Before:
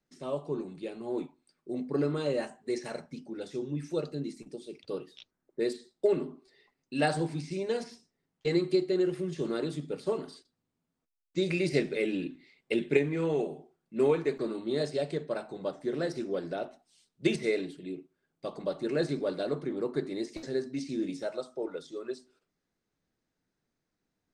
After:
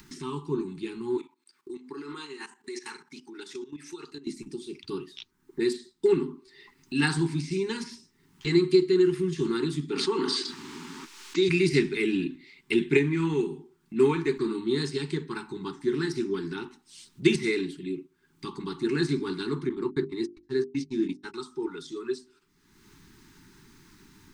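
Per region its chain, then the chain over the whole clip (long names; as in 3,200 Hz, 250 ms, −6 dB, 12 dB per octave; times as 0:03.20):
0:01.17–0:04.27: high-pass filter 460 Hz + output level in coarse steps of 14 dB
0:09.89–0:11.49: three-way crossover with the lows and the highs turned down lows −24 dB, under 230 Hz, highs −20 dB, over 7,600 Hz + envelope flattener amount 70%
0:19.69–0:21.34: noise gate −36 dBFS, range −45 dB + high-shelf EQ 7,300 Hz −9.5 dB + mains-hum notches 50/100/150/200/250/300/350/400 Hz
whole clip: elliptic band-stop filter 400–880 Hz, stop band 40 dB; upward compression, threshold −42 dBFS; level +6.5 dB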